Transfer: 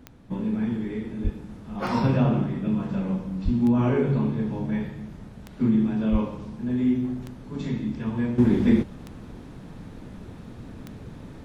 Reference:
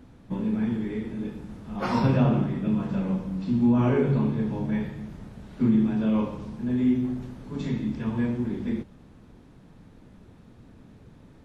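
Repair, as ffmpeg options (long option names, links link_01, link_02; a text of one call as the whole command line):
ffmpeg -i in.wav -filter_complex "[0:a]adeclick=threshold=4,asplit=3[link_01][link_02][link_03];[link_01]afade=type=out:start_time=1.23:duration=0.02[link_04];[link_02]highpass=frequency=140:width=0.5412,highpass=frequency=140:width=1.3066,afade=type=in:start_time=1.23:duration=0.02,afade=type=out:start_time=1.35:duration=0.02[link_05];[link_03]afade=type=in:start_time=1.35:duration=0.02[link_06];[link_04][link_05][link_06]amix=inputs=3:normalize=0,asplit=3[link_07][link_08][link_09];[link_07]afade=type=out:start_time=3.44:duration=0.02[link_10];[link_08]highpass=frequency=140:width=0.5412,highpass=frequency=140:width=1.3066,afade=type=in:start_time=3.44:duration=0.02,afade=type=out:start_time=3.56:duration=0.02[link_11];[link_09]afade=type=in:start_time=3.56:duration=0.02[link_12];[link_10][link_11][link_12]amix=inputs=3:normalize=0,asplit=3[link_13][link_14][link_15];[link_13]afade=type=out:start_time=6.11:duration=0.02[link_16];[link_14]highpass=frequency=140:width=0.5412,highpass=frequency=140:width=1.3066,afade=type=in:start_time=6.11:duration=0.02,afade=type=out:start_time=6.23:duration=0.02[link_17];[link_15]afade=type=in:start_time=6.23:duration=0.02[link_18];[link_16][link_17][link_18]amix=inputs=3:normalize=0,asetnsamples=nb_out_samples=441:pad=0,asendcmd='8.38 volume volume -10dB',volume=0dB" out.wav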